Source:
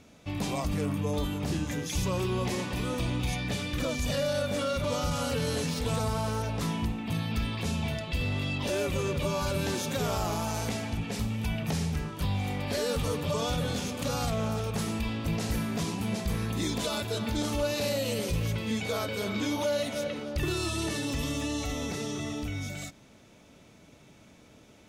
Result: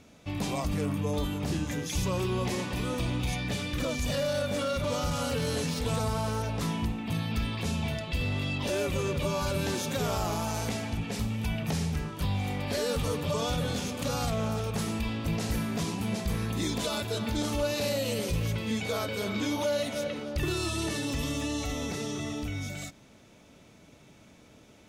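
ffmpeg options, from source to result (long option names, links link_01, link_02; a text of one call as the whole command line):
ffmpeg -i in.wav -filter_complex "[0:a]asettb=1/sr,asplit=3[link_01][link_02][link_03];[link_01]atrim=end=3.024[link_04];[link_02]atrim=start=3.02:end=5.53,asetpts=PTS-STARTPTS,afade=type=in:duration=0.004:curve=qsin,afade=type=out:start_time=2.506:duration=0.004:curve=qsin,volume=23.5dB,asoftclip=hard,volume=-23.5dB[link_05];[link_03]atrim=start=5.526[link_06];[link_04][link_05]acrossfade=duration=0.004:curve1=hsin:curve2=qsin[link_07];[link_07][link_06]acrossfade=duration=0.004:curve1=qsin:curve2=hsin" out.wav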